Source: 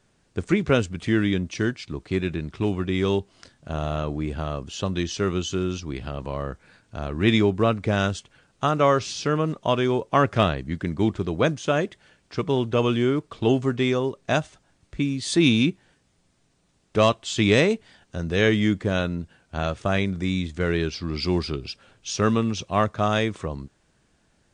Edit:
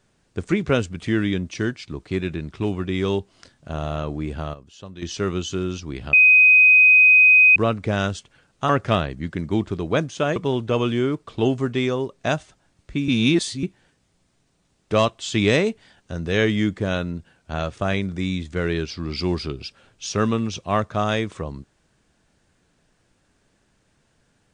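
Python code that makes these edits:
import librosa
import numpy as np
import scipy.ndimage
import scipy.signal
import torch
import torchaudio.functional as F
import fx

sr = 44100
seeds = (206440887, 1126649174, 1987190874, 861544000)

y = fx.edit(x, sr, fx.fade_down_up(start_s=4.37, length_s=0.82, db=-12.5, fade_s=0.17, curve='log'),
    fx.bleep(start_s=6.13, length_s=1.43, hz=2510.0, db=-9.0),
    fx.cut(start_s=8.69, length_s=1.48),
    fx.cut(start_s=11.84, length_s=0.56),
    fx.reverse_span(start_s=15.12, length_s=0.55), tone=tone)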